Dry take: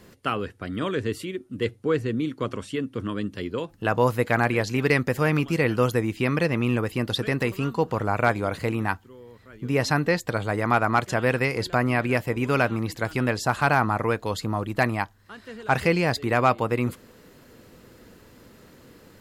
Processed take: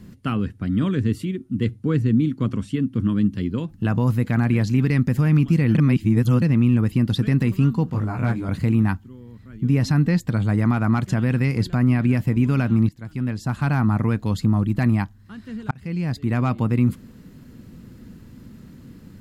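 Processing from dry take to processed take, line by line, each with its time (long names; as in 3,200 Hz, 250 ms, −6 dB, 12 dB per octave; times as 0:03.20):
0:05.75–0:06.42: reverse
0:07.90–0:08.49: micro pitch shift up and down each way 23 cents
0:12.89–0:14.09: fade in, from −19.5 dB
0:15.71–0:16.62: fade in
whole clip: low shelf with overshoot 320 Hz +12.5 dB, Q 1.5; boost into a limiter +6 dB; level −9 dB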